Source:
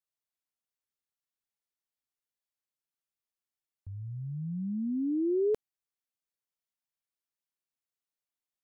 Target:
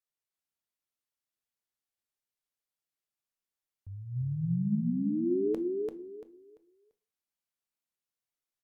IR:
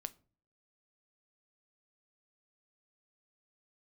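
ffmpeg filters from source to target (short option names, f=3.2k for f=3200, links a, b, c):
-filter_complex "[0:a]asplit=3[a][b][c];[a]afade=t=out:st=4.15:d=0.02[d];[b]acontrast=73,afade=t=in:st=4.15:d=0.02,afade=t=out:st=4.74:d=0.02[e];[c]afade=t=in:st=4.74:d=0.02[f];[d][e][f]amix=inputs=3:normalize=0,aecho=1:1:341|682|1023|1364:0.708|0.177|0.0442|0.0111[g];[1:a]atrim=start_sample=2205,afade=t=out:st=0.22:d=0.01,atrim=end_sample=10143,asetrate=35280,aresample=44100[h];[g][h]afir=irnorm=-1:irlink=0"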